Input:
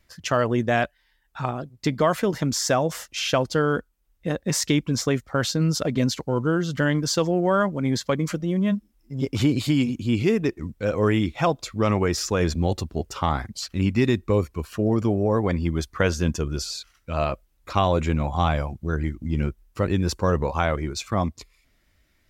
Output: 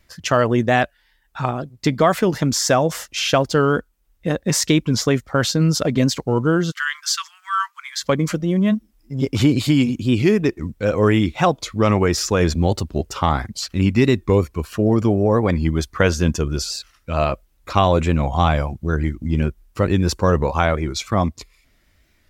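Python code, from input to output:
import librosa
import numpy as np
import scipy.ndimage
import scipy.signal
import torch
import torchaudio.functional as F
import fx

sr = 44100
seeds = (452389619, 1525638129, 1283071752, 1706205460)

y = fx.steep_highpass(x, sr, hz=1100.0, slope=72, at=(6.7, 8.02), fade=0.02)
y = fx.record_warp(y, sr, rpm=45.0, depth_cents=100.0)
y = F.gain(torch.from_numpy(y), 5.0).numpy()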